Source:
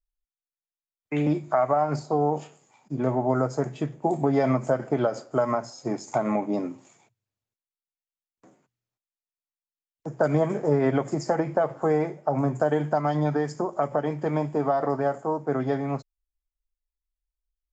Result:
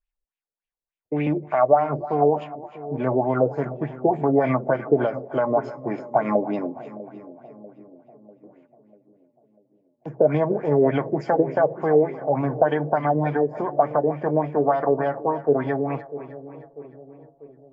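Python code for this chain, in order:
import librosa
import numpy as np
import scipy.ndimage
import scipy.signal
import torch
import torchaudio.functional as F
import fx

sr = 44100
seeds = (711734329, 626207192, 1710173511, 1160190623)

y = fx.filter_lfo_lowpass(x, sr, shape='sine', hz=3.4, low_hz=450.0, high_hz=2900.0, q=3.4)
y = fx.notch(y, sr, hz=1300.0, q=9.0)
y = fx.echo_split(y, sr, split_hz=580.0, low_ms=644, high_ms=306, feedback_pct=52, wet_db=-14.5)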